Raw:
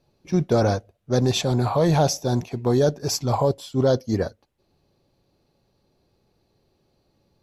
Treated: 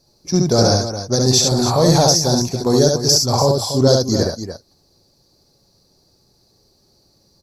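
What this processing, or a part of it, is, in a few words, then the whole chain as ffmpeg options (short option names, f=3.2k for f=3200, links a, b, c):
over-bright horn tweeter: -af "highshelf=f=3.8k:t=q:w=3:g=9,alimiter=limit=-8.5dB:level=0:latency=1:release=157,aecho=1:1:69.97|288.6:0.708|0.316,volume=4dB"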